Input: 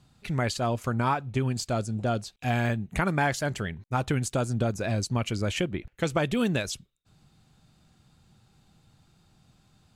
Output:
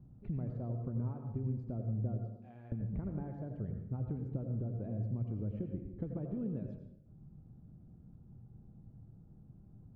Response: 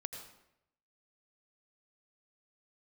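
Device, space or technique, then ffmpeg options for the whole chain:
television next door: -filter_complex "[0:a]asettb=1/sr,asplit=3[a][b][c];[a]atrim=end=2.264[d];[b]atrim=start=2.26:end=2.72,asetpts=PTS-STARTPTS,afade=t=in:d=0.004:c=qsin,afade=t=out:st=0.456:d=0.004:c=qsin,aderivative[e];[c]atrim=start=2.716[f];[d][e]acrossfade=d=0.004:c1=hsin:c2=qsin[g];[g][f]acrossfade=d=0.004:c1=qsin:c2=hsin,acompressor=threshold=-40dB:ratio=6,lowpass=340[h];[1:a]atrim=start_sample=2205[i];[h][i]afir=irnorm=-1:irlink=0,volume=7.5dB"

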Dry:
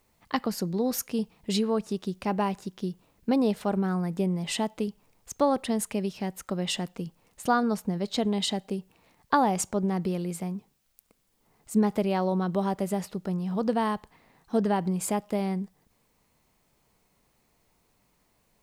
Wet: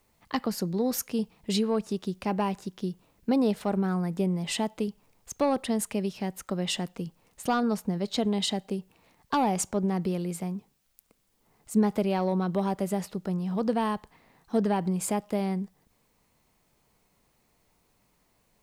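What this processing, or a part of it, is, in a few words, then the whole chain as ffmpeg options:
one-band saturation: -filter_complex "[0:a]acrossover=split=460|3200[a][b][c];[b]asoftclip=type=tanh:threshold=-21.5dB[d];[a][d][c]amix=inputs=3:normalize=0"

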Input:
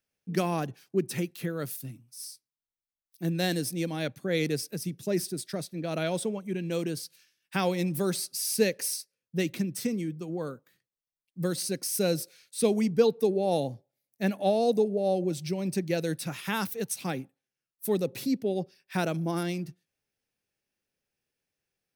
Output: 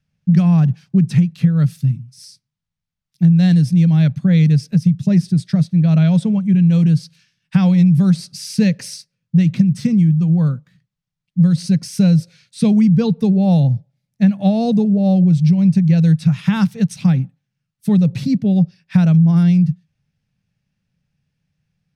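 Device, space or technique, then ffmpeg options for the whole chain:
jukebox: -af "lowpass=5.6k,lowshelf=f=240:t=q:w=3:g=13.5,acompressor=threshold=-17dB:ratio=4,volume=7dB"

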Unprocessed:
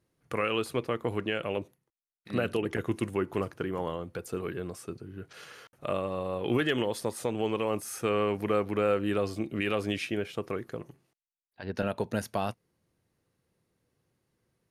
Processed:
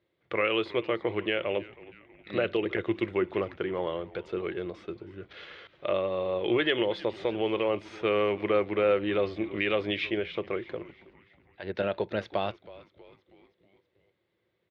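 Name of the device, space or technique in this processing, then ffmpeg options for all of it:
frequency-shifting delay pedal into a guitar cabinet: -filter_complex "[0:a]asplit=6[a][b][c][d][e][f];[b]adelay=320,afreqshift=-120,volume=-19dB[g];[c]adelay=640,afreqshift=-240,volume=-24dB[h];[d]adelay=960,afreqshift=-360,volume=-29.1dB[i];[e]adelay=1280,afreqshift=-480,volume=-34.1dB[j];[f]adelay=1600,afreqshift=-600,volume=-39.1dB[k];[a][g][h][i][j][k]amix=inputs=6:normalize=0,highpass=85,equalizer=f=140:t=q:w=4:g=-9,equalizer=f=250:t=q:w=4:g=-9,equalizer=f=350:t=q:w=4:g=7,equalizer=f=570:t=q:w=4:g=6,equalizer=f=2.1k:t=q:w=4:g=8,equalizer=f=3.5k:t=q:w=4:g=9,lowpass=f=4k:w=0.5412,lowpass=f=4k:w=1.3066,volume=-1dB"

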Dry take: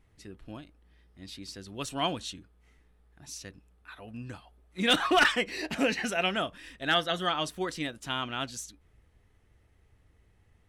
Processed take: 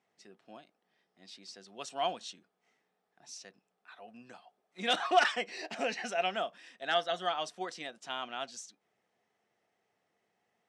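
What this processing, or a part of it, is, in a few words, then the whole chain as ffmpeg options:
television speaker: -af "highpass=f=210:w=0.5412,highpass=f=210:w=1.3066,equalizer=f=290:t=q:w=4:g=-10,equalizer=f=720:t=q:w=4:g=9,equalizer=f=5.4k:t=q:w=4:g=4,lowpass=f=8.6k:w=0.5412,lowpass=f=8.6k:w=1.3066,volume=-6.5dB"

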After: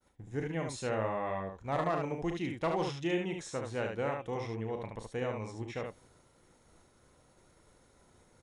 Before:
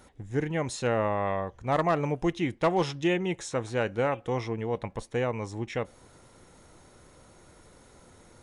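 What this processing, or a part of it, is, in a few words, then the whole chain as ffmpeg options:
slapback doubling: -filter_complex "[0:a]asplit=3[a][b][c];[b]adelay=36,volume=-9dB[d];[c]adelay=73,volume=-4.5dB[e];[a][d][e]amix=inputs=3:normalize=0,agate=range=-33dB:threshold=-49dB:ratio=3:detection=peak,volume=-8dB"

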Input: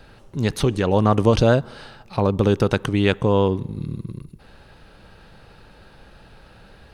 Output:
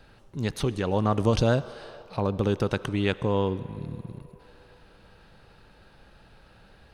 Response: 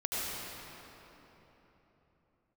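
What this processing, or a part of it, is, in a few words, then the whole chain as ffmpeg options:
filtered reverb send: -filter_complex "[0:a]asettb=1/sr,asplit=3[a][b][c];[a]atrim=end=1.204[d];[b]atrim=start=1.2:end=1.73,asetpts=PTS-STARTPTS,afade=t=in:d=0.004:c=qsin,afade=t=out:st=0.526:d=0.004:c=qsin,bass=f=250:g=2,treble=f=4k:g=4[e];[c]atrim=start=1.726[f];[d][e]acrossfade=d=0.004:c1=hsin:c2=qsin[g];[g][f]acrossfade=d=0.004:c1=qsin:c2=hsin,asplit=2[h][i];[i]highpass=f=400:w=0.5412,highpass=f=400:w=1.3066,lowpass=8.6k[j];[1:a]atrim=start_sample=2205[k];[j][k]afir=irnorm=-1:irlink=0,volume=-22dB[l];[h][l]amix=inputs=2:normalize=0,volume=-7dB"

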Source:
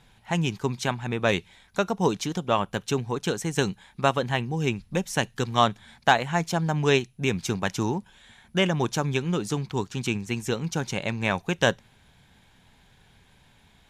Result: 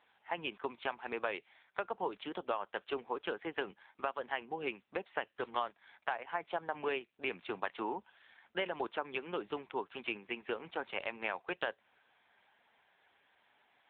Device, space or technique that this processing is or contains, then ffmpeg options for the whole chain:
voicemail: -af "highpass=230,highpass=440,lowpass=2.9k,acompressor=threshold=-28dB:ratio=10,volume=-2.5dB" -ar 8000 -c:a libopencore_amrnb -b:a 6700

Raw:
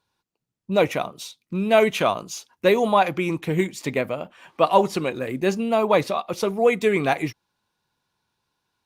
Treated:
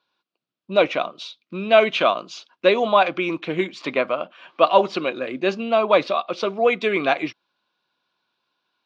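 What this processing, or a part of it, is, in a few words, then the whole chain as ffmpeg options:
phone earpiece: -filter_complex "[0:a]highpass=370,equalizer=f=440:t=q:w=4:g=-7,equalizer=f=860:t=q:w=4:g=-9,equalizer=f=1.9k:t=q:w=4:g=-8,lowpass=f=4.2k:w=0.5412,lowpass=f=4.2k:w=1.3066,asettb=1/sr,asplit=3[a][b][c];[a]atrim=end=3.734[d];[b]atrim=start=3.73:end=4.22,asetpts=PTS-STARTPTS,afade=t=in:d=0.004:c=qsin,afade=t=out:st=0.486:d=0.004:c=qsin,equalizer=f=1.1k:t=o:w=0.91:g=7[e];[c]atrim=start=4.216[f];[d][e]acrossfade=d=0.004:c1=hsin:c2=qsin[g];[g][f]acrossfade=d=0.004:c1=qsin:c2=hsin,volume=6dB"

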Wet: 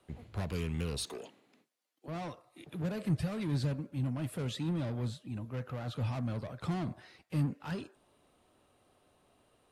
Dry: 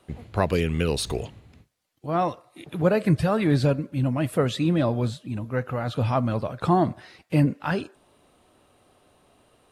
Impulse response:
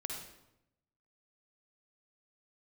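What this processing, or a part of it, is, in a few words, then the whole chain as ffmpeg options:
one-band saturation: -filter_complex "[0:a]asettb=1/sr,asplit=3[a][b][c];[a]atrim=end=1.054[d];[b]atrim=start=1.05:end=2.08,asetpts=PTS-STARTPTS,afade=t=in:d=0.004:c=qsin,afade=t=out:st=1.026:d=0.004:c=qsin,highpass=f=240:w=0.5412,highpass=f=240:w=1.3066[e];[c]atrim=start=2.076[f];[d][e]acrossfade=d=0.004:c1=hsin:c2=qsin[g];[g][f]acrossfade=d=0.004:c1=qsin:c2=hsin,acrossover=split=220|3700[h][i][j];[i]asoftclip=type=tanh:threshold=-31.5dB[k];[h][k][j]amix=inputs=3:normalize=0,volume=-8.5dB"

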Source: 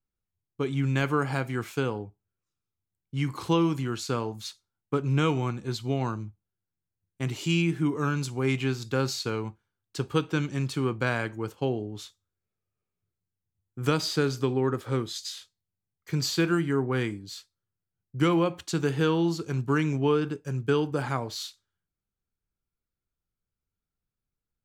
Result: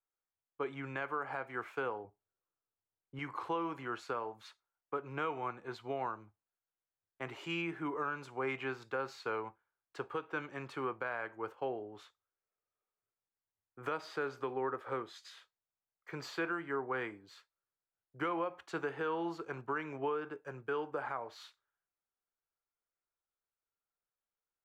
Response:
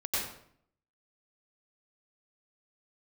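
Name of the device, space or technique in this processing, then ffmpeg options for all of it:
DJ mixer with the lows and highs turned down: -filter_complex "[0:a]asettb=1/sr,asplit=3[a][b][c];[a]atrim=end=2.044[d];[b]atrim=start=2.04:end=3.19,asetpts=PTS-STARTPTS,afade=t=in:d=0.004:c=qsin,afade=t=out:st=1.146:d=0.004:c=qsin,tiltshelf=f=970:g=5.5[e];[c]atrim=start=3.186[f];[d][e]acrossfade=d=0.004:c1=hsin:c2=qsin[g];[g][f]acrossfade=d=0.004:c1=qsin:c2=hsin,acrossover=split=470 2100:gain=0.0708 1 0.0708[h][i][j];[h][i][j]amix=inputs=3:normalize=0,alimiter=level_in=3.5dB:limit=-24dB:level=0:latency=1:release=284,volume=-3.5dB,volume=1dB"

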